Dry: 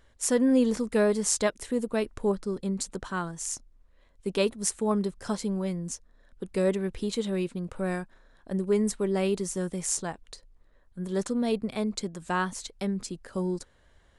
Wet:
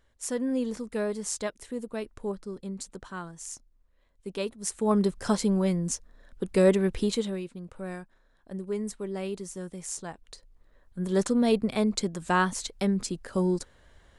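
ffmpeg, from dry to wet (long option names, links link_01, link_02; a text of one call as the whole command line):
ffmpeg -i in.wav -af "volume=16dB,afade=type=in:start_time=4.62:duration=0.46:silence=0.266073,afade=type=out:start_time=7:duration=0.41:silence=0.251189,afade=type=in:start_time=9.94:duration=1.23:silence=0.281838" out.wav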